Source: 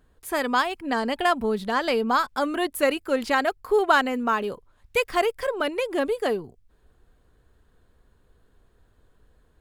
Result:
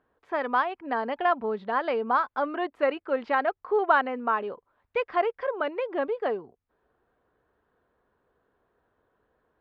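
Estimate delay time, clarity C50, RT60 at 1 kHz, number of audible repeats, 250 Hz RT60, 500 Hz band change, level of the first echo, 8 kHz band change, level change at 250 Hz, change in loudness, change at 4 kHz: none, none, none, none, none, -3.0 dB, none, under -30 dB, -7.0 dB, -3.0 dB, -12.0 dB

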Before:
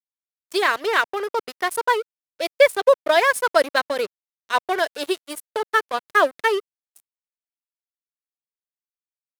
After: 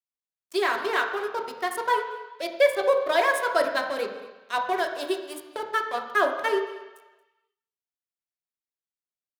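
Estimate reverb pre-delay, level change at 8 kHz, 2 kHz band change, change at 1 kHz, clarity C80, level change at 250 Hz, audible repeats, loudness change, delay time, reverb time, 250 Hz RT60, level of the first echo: 3 ms, -7.0 dB, -5.5 dB, -4.0 dB, 8.5 dB, -2.5 dB, 1, -4.5 dB, 0.228 s, 1.1 s, 1.0 s, -20.5 dB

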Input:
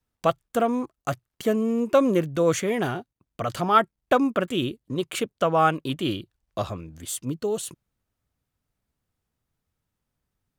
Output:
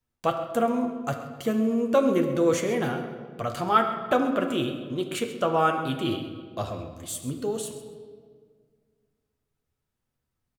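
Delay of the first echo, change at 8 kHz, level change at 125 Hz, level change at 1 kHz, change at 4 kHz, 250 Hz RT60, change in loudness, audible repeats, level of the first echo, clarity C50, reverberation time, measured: 0.132 s, -2.5 dB, -2.5 dB, -2.0 dB, -2.0 dB, 2.1 s, -1.5 dB, 1, -15.0 dB, 7.0 dB, 1.9 s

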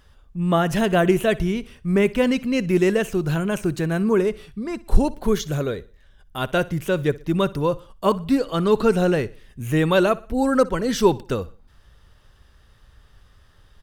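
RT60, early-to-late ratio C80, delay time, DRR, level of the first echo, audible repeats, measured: none, none, 61 ms, none, -20.5 dB, 2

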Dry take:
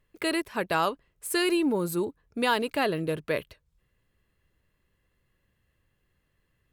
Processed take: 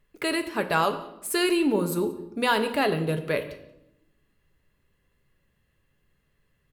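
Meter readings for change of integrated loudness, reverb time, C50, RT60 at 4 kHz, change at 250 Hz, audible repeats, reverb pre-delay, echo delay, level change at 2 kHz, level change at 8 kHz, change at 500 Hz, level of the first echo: +2.0 dB, 0.85 s, 11.5 dB, 0.65 s, +2.0 dB, 1, 4 ms, 0.182 s, +2.0 dB, +2.0 dB, +2.5 dB, -22.5 dB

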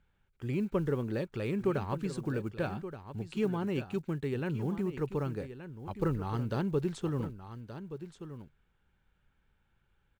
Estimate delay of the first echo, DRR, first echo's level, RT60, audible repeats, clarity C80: 1.175 s, none, -11.5 dB, none, 1, none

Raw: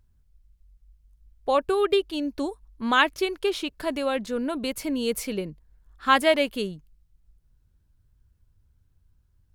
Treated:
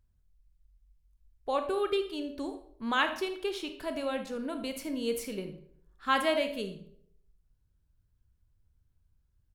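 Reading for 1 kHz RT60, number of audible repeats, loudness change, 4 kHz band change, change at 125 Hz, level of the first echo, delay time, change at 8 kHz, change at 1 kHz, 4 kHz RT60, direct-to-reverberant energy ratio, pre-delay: 0.55 s, 1, -7.0 dB, -7.0 dB, -7.0 dB, -15.0 dB, 79 ms, -7.5 dB, -7.0 dB, 0.45 s, 6.5 dB, 26 ms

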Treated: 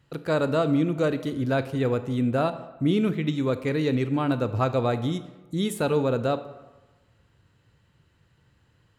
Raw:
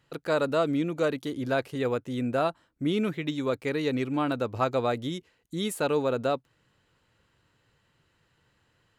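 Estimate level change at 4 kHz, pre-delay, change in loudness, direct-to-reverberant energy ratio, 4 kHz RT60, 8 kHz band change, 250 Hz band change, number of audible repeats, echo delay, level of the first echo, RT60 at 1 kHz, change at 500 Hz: +0.5 dB, 20 ms, +3.0 dB, 11.0 dB, 0.70 s, 0.0 dB, +4.5 dB, none, none, none, 1.2 s, +2.0 dB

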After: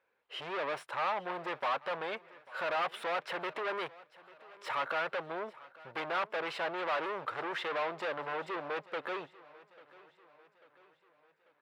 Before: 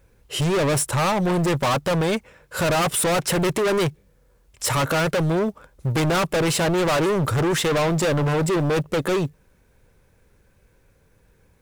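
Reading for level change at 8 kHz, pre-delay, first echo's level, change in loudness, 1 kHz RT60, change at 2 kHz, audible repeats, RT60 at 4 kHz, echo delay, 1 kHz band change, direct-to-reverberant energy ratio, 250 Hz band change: under -30 dB, none, -21.0 dB, -14.5 dB, none, -9.5 dB, 3, none, 0.843 s, -9.5 dB, none, -24.5 dB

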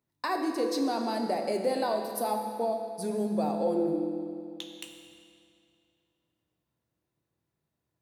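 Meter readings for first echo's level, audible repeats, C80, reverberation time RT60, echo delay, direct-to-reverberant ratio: none, none, 5.0 dB, 2.4 s, none, 2.0 dB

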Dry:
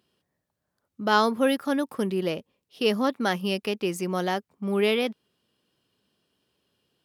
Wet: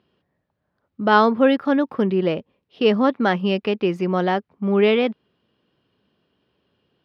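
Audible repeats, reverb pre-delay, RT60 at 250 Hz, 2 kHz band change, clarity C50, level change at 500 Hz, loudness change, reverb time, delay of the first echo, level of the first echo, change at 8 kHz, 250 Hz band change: none, none, none, +5.0 dB, none, +6.5 dB, +6.0 dB, none, none, none, under -15 dB, +7.0 dB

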